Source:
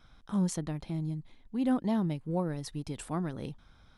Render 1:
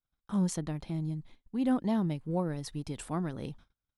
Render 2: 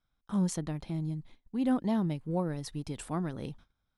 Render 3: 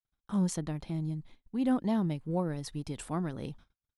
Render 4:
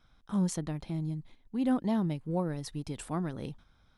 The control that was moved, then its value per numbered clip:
noise gate, range: −35, −22, −57, −6 decibels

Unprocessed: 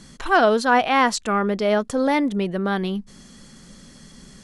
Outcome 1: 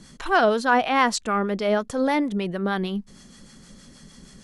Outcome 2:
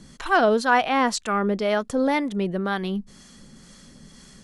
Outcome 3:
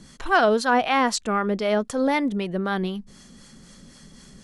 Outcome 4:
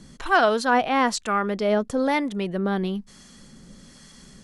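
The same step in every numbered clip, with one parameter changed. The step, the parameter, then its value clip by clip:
two-band tremolo in antiphase, speed: 6.4, 2, 3.9, 1.1 Hertz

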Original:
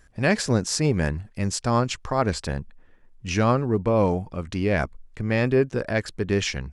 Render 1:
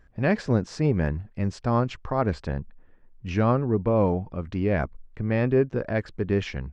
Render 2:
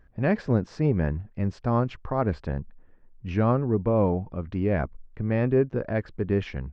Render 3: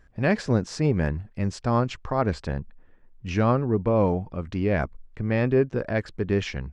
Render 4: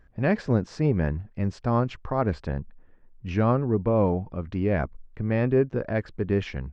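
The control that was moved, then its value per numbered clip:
head-to-tape spacing loss, at 10 kHz: 28, 45, 20, 37 decibels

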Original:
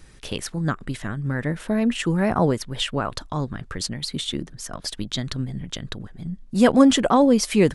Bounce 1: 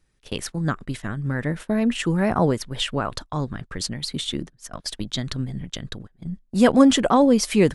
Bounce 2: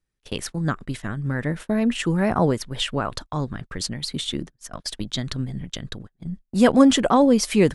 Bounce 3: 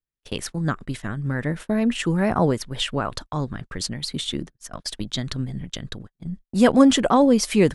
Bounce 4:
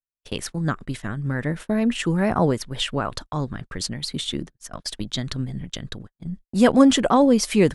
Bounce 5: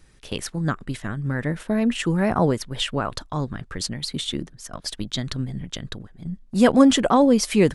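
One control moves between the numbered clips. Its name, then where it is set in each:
noise gate, range: −19, −32, −46, −59, −6 decibels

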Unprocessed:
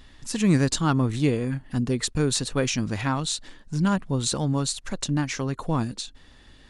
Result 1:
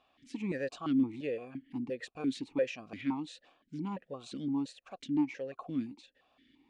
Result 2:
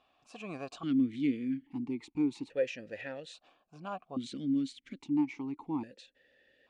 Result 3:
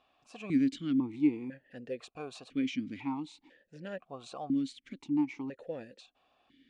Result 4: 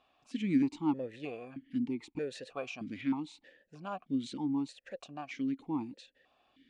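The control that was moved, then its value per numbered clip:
formant filter that steps through the vowels, speed: 5.8, 1.2, 2, 3.2 Hertz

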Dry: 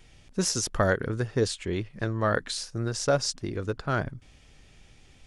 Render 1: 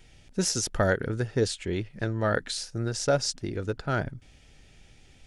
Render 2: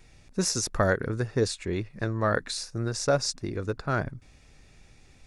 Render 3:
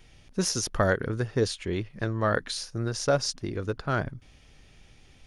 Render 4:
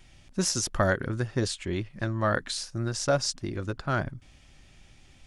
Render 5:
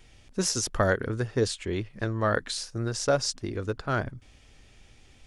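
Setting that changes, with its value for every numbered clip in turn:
notch filter, centre frequency: 1,100, 3,100, 7,700, 450, 160 Hertz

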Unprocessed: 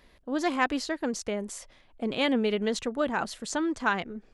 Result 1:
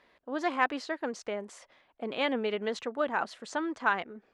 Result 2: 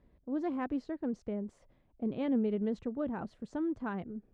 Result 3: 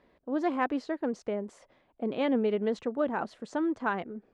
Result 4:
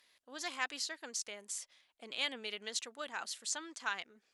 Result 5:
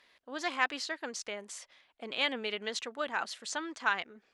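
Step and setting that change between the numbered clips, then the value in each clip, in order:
resonant band-pass, frequency: 1,100, 110, 430, 7,800, 2,900 Hertz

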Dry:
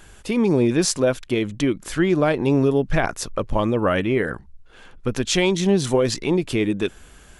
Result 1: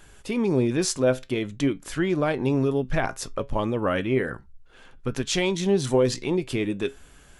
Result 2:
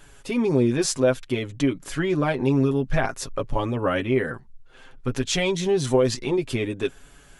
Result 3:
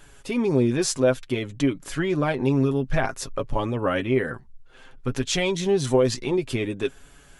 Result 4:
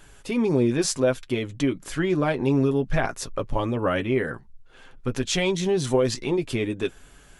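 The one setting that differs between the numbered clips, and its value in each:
flanger, regen: +77, −2, +20, −33%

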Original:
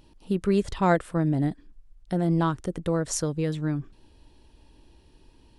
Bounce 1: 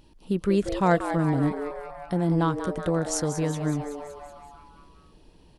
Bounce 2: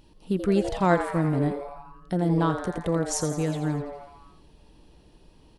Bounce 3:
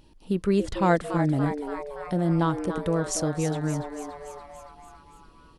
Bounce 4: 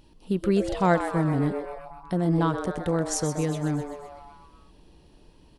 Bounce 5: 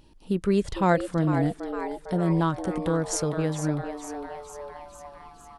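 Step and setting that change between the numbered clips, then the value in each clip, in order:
echo with shifted repeats, delay time: 188, 84, 286, 127, 455 milliseconds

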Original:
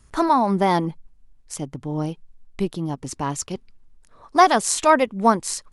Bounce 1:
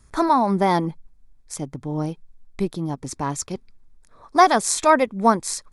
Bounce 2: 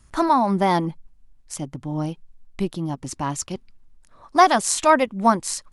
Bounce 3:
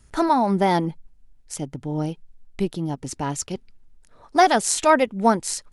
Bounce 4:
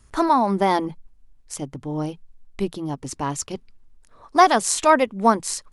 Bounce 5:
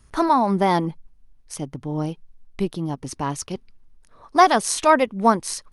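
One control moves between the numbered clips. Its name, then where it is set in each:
notch filter, centre frequency: 2,900, 440, 1,100, 170, 7,400 Hertz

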